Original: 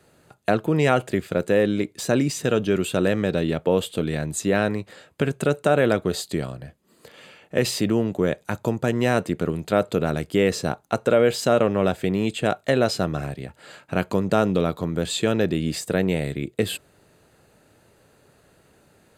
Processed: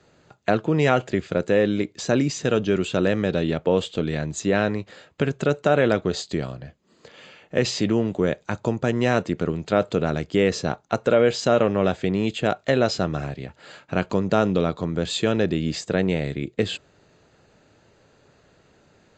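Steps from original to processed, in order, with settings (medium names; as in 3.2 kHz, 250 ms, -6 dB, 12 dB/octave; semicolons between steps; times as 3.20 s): Vorbis 64 kbps 16 kHz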